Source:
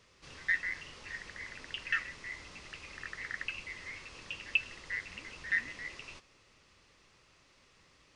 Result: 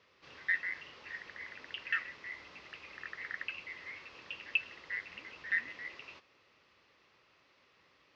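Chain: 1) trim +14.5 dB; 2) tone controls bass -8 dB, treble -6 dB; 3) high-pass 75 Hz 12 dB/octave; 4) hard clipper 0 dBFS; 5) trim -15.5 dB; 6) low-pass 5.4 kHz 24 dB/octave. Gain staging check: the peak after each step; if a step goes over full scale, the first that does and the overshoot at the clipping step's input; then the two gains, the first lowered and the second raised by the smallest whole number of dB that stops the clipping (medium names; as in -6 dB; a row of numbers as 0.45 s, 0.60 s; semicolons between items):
-1.0 dBFS, -2.0 dBFS, -2.0 dBFS, -2.0 dBFS, -17.5 dBFS, -17.5 dBFS; nothing clips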